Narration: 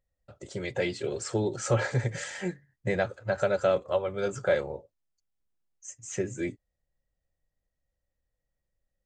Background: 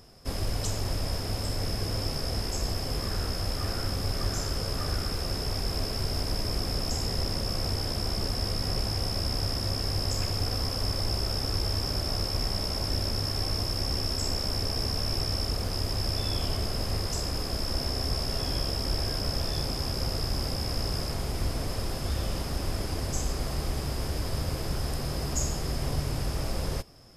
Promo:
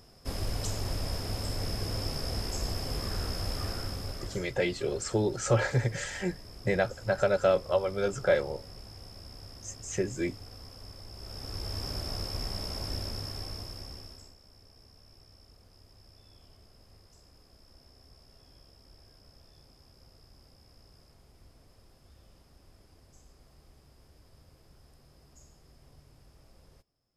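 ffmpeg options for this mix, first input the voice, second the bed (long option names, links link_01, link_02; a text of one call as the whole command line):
ffmpeg -i stem1.wav -i stem2.wav -filter_complex "[0:a]adelay=3800,volume=0.5dB[link_01];[1:a]volume=9dB,afade=type=out:start_time=3.58:duration=0.94:silence=0.177828,afade=type=in:start_time=11.13:duration=0.73:silence=0.251189,afade=type=out:start_time=12.91:duration=1.44:silence=0.0794328[link_02];[link_01][link_02]amix=inputs=2:normalize=0" out.wav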